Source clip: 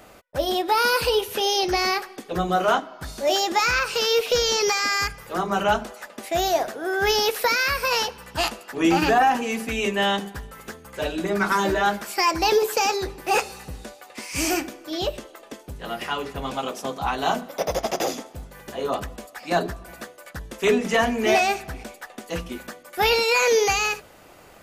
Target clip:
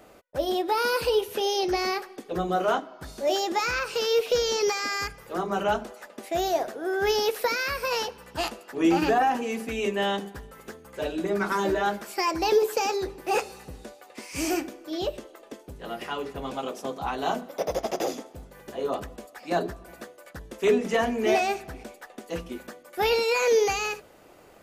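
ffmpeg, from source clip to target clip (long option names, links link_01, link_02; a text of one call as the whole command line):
ffmpeg -i in.wav -af "equalizer=frequency=390:width=0.79:gain=6,volume=-7dB" out.wav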